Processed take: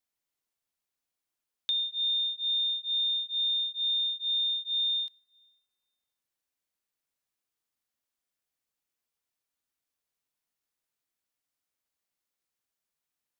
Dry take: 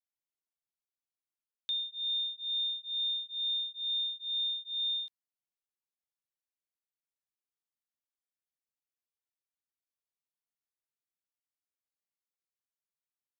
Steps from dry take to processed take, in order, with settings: compression, threshold -34 dBFS, peak gain reduction 4 dB; on a send: reverberation RT60 2.2 s, pre-delay 3 ms, DRR 17.5 dB; on the sum: trim +7 dB

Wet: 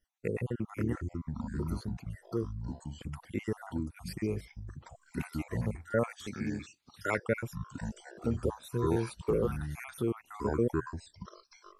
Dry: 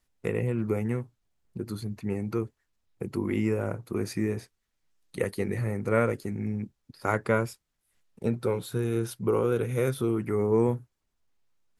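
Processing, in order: random holes in the spectrogram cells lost 51%; ever faster or slower copies 429 ms, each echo -6 st, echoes 2; 6.27–7.18 s: frequency weighting D; trim -3.5 dB

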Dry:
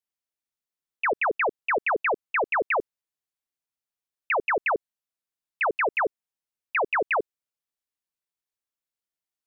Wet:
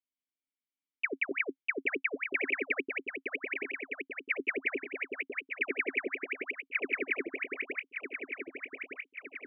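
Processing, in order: backward echo that repeats 606 ms, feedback 75%, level -5 dB; dynamic bell 380 Hz, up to +6 dB, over -41 dBFS, Q 3.5; vowel filter i; trim +6 dB

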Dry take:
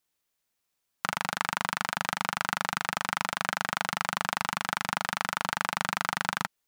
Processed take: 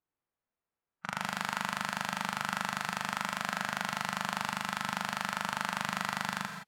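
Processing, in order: level-controlled noise filter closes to 1.4 kHz, open at -30.5 dBFS; gated-style reverb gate 190 ms rising, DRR 7.5 dB; harmonic-percussive split percussive -10 dB

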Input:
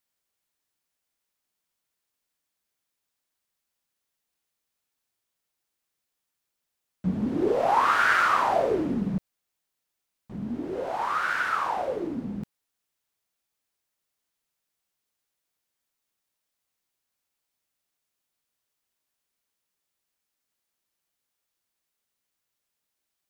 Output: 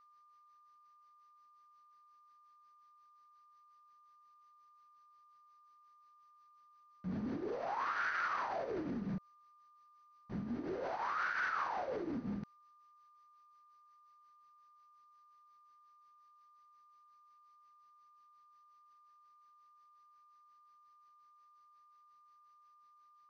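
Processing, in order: tremolo 5.6 Hz, depth 70%; reverse; compression, threshold -31 dBFS, peak gain reduction 11.5 dB; reverse; peak limiter -32.5 dBFS, peak gain reduction 10 dB; rippled Chebyshev low-pass 6.2 kHz, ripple 6 dB; whistle 1.2 kHz -68 dBFS; trim +5.5 dB

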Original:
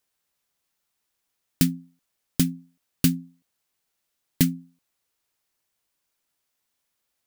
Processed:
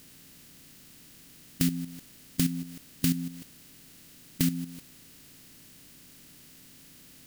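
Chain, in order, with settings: spectral levelling over time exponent 0.4; level held to a coarse grid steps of 10 dB; trim -3 dB

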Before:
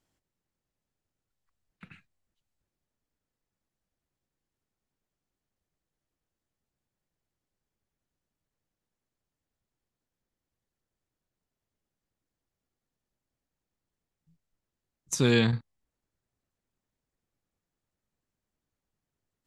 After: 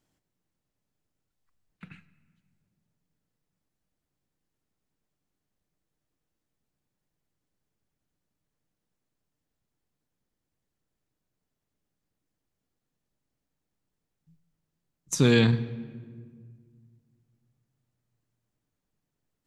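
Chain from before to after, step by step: peaking EQ 210 Hz +3.5 dB 1.7 oct; simulated room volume 2500 m³, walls mixed, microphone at 0.45 m; trim +1 dB

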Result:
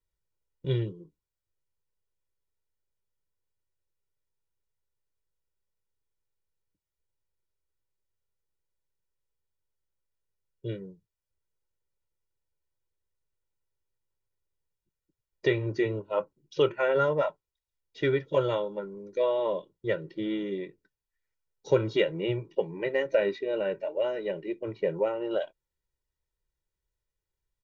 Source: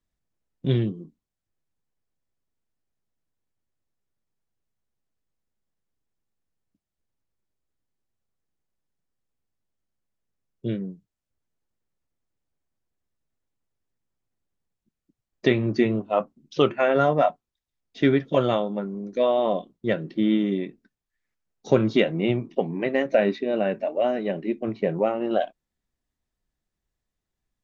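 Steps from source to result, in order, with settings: comb 2.1 ms, depth 88%; trim -7.5 dB

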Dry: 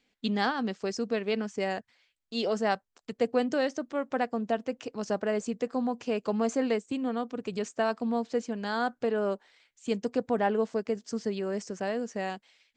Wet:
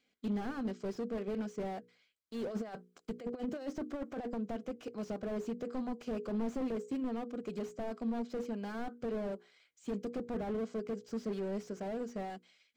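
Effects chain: hum notches 60/120/180/240/300/360/420/480 Hz; 2.47–4.40 s: compressor with a negative ratio -32 dBFS, ratio -0.5; comb of notches 900 Hz; slew-rate limiter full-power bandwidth 12 Hz; trim -3.5 dB

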